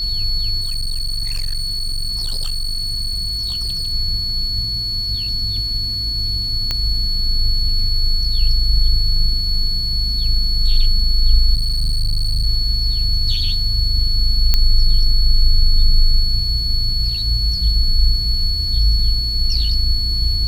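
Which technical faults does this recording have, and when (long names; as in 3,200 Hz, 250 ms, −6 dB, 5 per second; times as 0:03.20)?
whistle 4,400 Hz −20 dBFS
0:00.60–0:03.93: clipping −18 dBFS
0:06.71: click −6 dBFS
0:11.54–0:12.47: clipping −14 dBFS
0:14.54: click −1 dBFS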